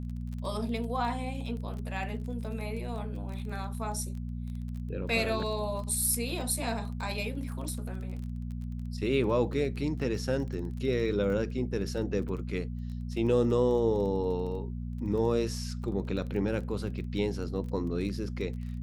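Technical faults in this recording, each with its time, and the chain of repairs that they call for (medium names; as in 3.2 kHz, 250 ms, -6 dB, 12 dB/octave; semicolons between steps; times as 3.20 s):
crackle 21 per s -38 dBFS
hum 60 Hz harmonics 4 -36 dBFS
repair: de-click; de-hum 60 Hz, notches 4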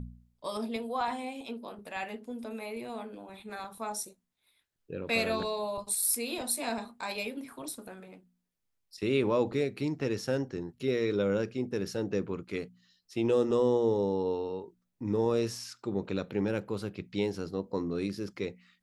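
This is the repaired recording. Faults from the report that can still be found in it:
nothing left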